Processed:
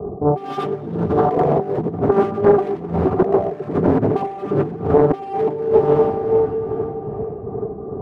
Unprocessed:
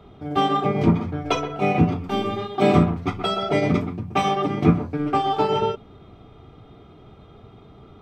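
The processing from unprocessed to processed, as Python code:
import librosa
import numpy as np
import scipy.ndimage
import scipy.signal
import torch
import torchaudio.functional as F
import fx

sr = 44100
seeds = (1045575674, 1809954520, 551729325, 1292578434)

y = scipy.signal.sosfilt(scipy.signal.cheby1(10, 1.0, 1200.0, 'lowpass', fs=sr, output='sos'), x)
y = y + 0.6 * np.pad(y, (int(1.7 * sr / 1000.0), 0))[:len(y)]
y = fx.echo_feedback(y, sr, ms=83, feedback_pct=21, wet_db=-3.0)
y = np.clip(y, -10.0 ** (-20.0 / 20.0), 10.0 ** (-20.0 / 20.0))
y = fx.dereverb_blind(y, sr, rt60_s=0.59)
y = fx.rev_plate(y, sr, seeds[0], rt60_s=4.7, hf_ratio=0.65, predelay_ms=0, drr_db=9.0)
y = y * (1.0 - 0.44 / 2.0 + 0.44 / 2.0 * np.cos(2.0 * np.pi * 2.5 * (np.arange(len(y)) / sr)))
y = fx.over_compress(y, sr, threshold_db=-32.0, ratio=-0.5)
y = fx.highpass(y, sr, hz=190.0, slope=6)
y = fx.low_shelf_res(y, sr, hz=440.0, db=9.5, q=1.5)
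y = fx.small_body(y, sr, hz=(420.0, 730.0), ring_ms=25, db=14)
y = fx.doppler_dist(y, sr, depth_ms=0.58)
y = y * librosa.db_to_amplitude(4.0)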